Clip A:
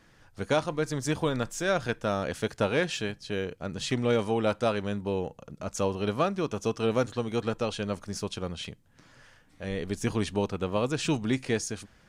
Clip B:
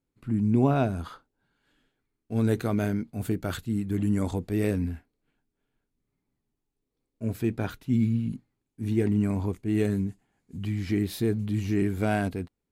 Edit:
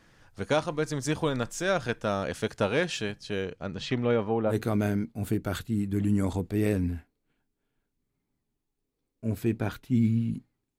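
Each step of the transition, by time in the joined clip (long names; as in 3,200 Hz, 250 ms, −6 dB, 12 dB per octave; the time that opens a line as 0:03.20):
clip A
0:03.42–0:04.57: low-pass filter 9,600 Hz → 1,000 Hz
0:04.52: continue with clip B from 0:02.50, crossfade 0.10 s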